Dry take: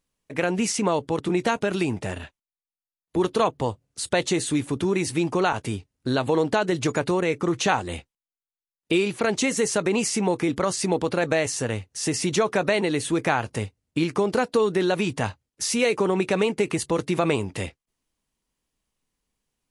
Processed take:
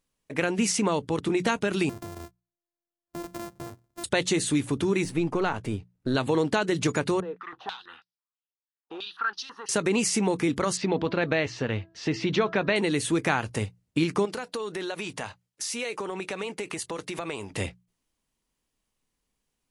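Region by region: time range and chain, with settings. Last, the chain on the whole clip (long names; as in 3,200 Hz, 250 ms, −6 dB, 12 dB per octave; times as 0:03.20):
0:01.89–0:04.04: samples sorted by size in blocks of 128 samples + parametric band 2,800 Hz −8.5 dB 1.6 octaves + downward compressor, threshold −34 dBFS
0:05.04–0:06.15: gain on one half-wave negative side −3 dB + high-shelf EQ 2,800 Hz −9.5 dB
0:07.20–0:09.69: phaser with its sweep stopped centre 2,200 Hz, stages 6 + mid-hump overdrive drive 17 dB, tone 2,200 Hz, clips at −12 dBFS + band-pass on a step sequencer 6.1 Hz 540–5,200 Hz
0:10.77–0:12.76: low-pass filter 4,200 Hz 24 dB per octave + hum removal 329.3 Hz, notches 5
0:14.25–0:17.51: low-shelf EQ 360 Hz −11.5 dB + downward compressor 3 to 1, threshold −30 dBFS
whole clip: mains-hum notches 60/120/180 Hz; dynamic equaliser 670 Hz, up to −5 dB, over −32 dBFS, Q 1.1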